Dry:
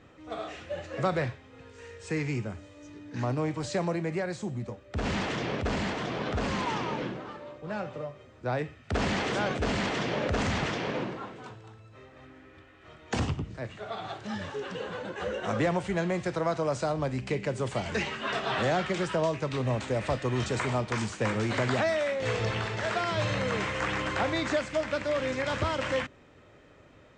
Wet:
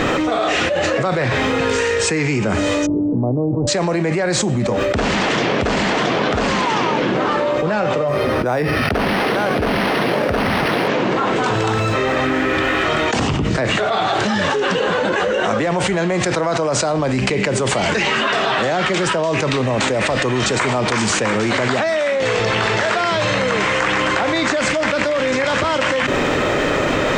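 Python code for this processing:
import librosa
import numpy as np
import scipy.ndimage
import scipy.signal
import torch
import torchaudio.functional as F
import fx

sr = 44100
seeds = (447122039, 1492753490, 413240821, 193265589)

y = fx.gaussian_blur(x, sr, sigma=14.0, at=(2.85, 3.67), fade=0.02)
y = fx.resample_linear(y, sr, factor=6, at=(8.08, 10.88))
y = fx.peak_eq(y, sr, hz=77.0, db=-11.5, octaves=1.8)
y = fx.env_flatten(y, sr, amount_pct=100)
y = y * 10.0 ** (6.5 / 20.0)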